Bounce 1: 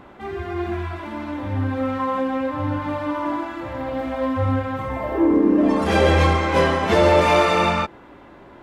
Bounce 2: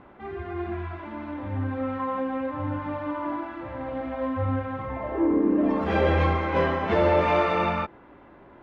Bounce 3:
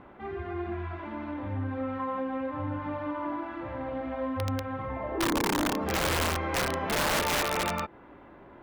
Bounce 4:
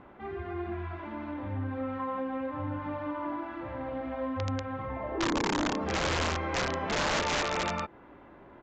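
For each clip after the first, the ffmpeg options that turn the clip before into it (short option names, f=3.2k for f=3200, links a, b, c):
-af "lowpass=2.6k,volume=-5.5dB"
-filter_complex "[0:a]asplit=2[a][b];[b]acompressor=threshold=-32dB:ratio=10,volume=2dB[c];[a][c]amix=inputs=2:normalize=0,aeval=exprs='(mod(5.01*val(0)+1,2)-1)/5.01':c=same,volume=-7.5dB"
-af "aresample=16000,aresample=44100,volume=-1.5dB"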